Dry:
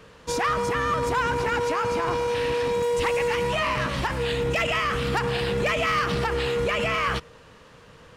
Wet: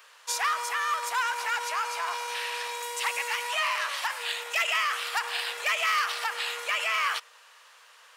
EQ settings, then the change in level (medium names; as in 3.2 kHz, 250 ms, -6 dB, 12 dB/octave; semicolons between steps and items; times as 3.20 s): Bessel high-pass 1.1 kHz, order 6; treble shelf 9 kHz +11 dB; 0.0 dB